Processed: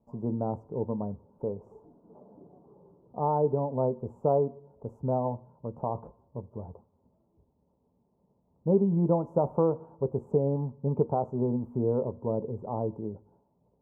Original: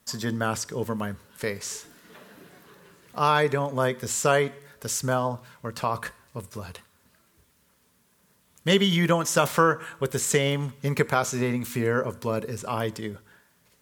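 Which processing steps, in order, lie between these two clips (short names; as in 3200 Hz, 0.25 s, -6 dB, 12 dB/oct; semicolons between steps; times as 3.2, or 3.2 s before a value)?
elliptic low-pass 880 Hz, stop band 50 dB; gain -1.5 dB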